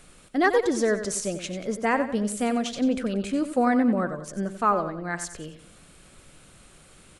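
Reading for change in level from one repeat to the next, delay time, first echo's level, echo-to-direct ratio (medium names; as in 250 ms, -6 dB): -8.5 dB, 92 ms, -10.5 dB, -10.0 dB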